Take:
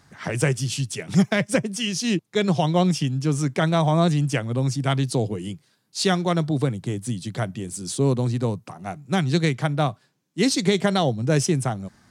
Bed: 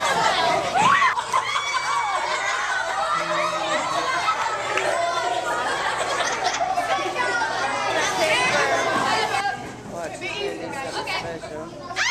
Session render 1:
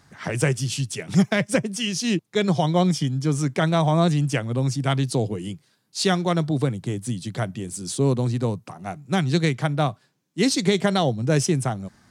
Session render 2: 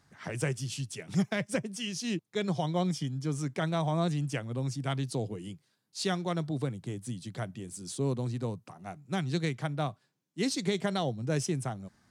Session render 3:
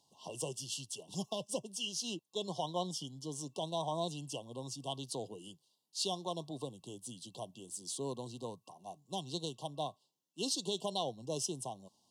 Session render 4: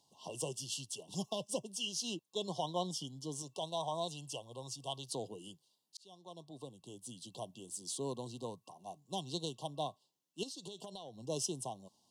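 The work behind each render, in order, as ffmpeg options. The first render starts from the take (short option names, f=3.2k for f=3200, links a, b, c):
-filter_complex "[0:a]asettb=1/sr,asplit=3[a][b][c];[a]atrim=end=2.474[d];[b]atrim=start=2.47:end=3.35,asetpts=PTS-STARTPTS,afade=t=in:d=0.004:c=qsin,afade=t=out:st=0.876:d=0.004:c=qsin,asuperstop=centerf=2700:order=8:qfactor=7.8[e];[c]atrim=start=3.346[f];[d][e]acrossfade=d=0.004:c1=hsin:c2=qsin[g];[g][f]acrossfade=d=0.004:c1=qsin:c2=hsin"
-af "volume=-10dB"
-af "highpass=f=810:p=1,afftfilt=real='re*(1-between(b*sr/4096,1100,2700))':imag='im*(1-between(b*sr/4096,1100,2700))':win_size=4096:overlap=0.75"
-filter_complex "[0:a]asettb=1/sr,asplit=3[a][b][c];[a]atrim=end=3.424[d];[b]atrim=start=3.42:end=5.1,asetpts=PTS-STARTPTS,afade=t=in:d=0.004:c=qsin,afade=t=out:st=1.676:d=0.004:c=qsin,equalizer=f=240:t=o:w=1.2:g=-9.5[e];[c]atrim=start=5.096[f];[d][e]acrossfade=d=0.004:c1=hsin:c2=qsin[g];[g][f]acrossfade=d=0.004:c1=qsin:c2=hsin,asettb=1/sr,asplit=3[h][i][j];[h]atrim=end=10.434[k];[i]atrim=start=10.43:end=11.27,asetpts=PTS-STARTPTS,afade=t=in:d=0.004:c=qsin,afade=t=out:st=0.836:d=0.004:c=qsin,acompressor=threshold=-43dB:ratio=12:attack=3.2:release=140:knee=1:detection=peak[l];[j]atrim=start=11.266[m];[k][l]acrossfade=d=0.004:c1=hsin:c2=qsin[n];[n][m]acrossfade=d=0.004:c1=qsin:c2=hsin,asplit=2[o][p];[o]atrim=end=5.97,asetpts=PTS-STARTPTS,afade=t=out:st=5.966:d=0.004:c=hsin[q];[p]atrim=start=5.97,asetpts=PTS-STARTPTS,afade=t=in:d=1.39[r];[q][r]concat=n=2:v=0:a=1"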